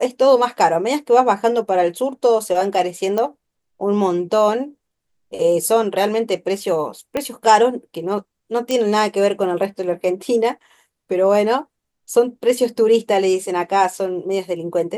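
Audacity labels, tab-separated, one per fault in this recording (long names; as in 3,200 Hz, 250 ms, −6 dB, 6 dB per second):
3.180000	3.180000	click −10 dBFS
7.170000	7.170000	click −9 dBFS
8.710000	8.710000	click −8 dBFS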